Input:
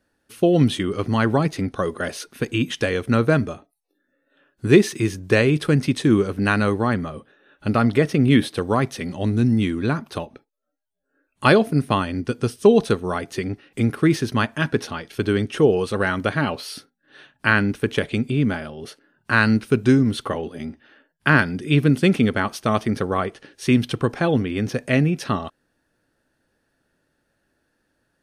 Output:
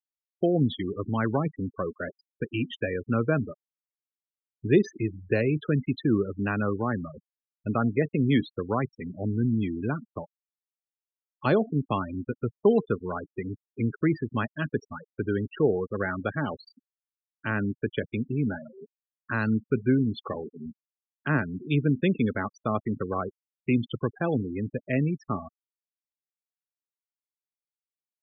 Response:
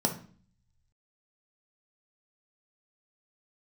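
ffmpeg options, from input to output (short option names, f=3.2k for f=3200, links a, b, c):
-filter_complex "[0:a]afftfilt=real='re*gte(hypot(re,im),0.1)':imag='im*gte(hypot(re,im),0.1)':win_size=1024:overlap=0.75,acrossover=split=220|920[a][b][c];[c]alimiter=limit=-14.5dB:level=0:latency=1:release=113[d];[a][b][d]amix=inputs=3:normalize=0,volume=-7dB"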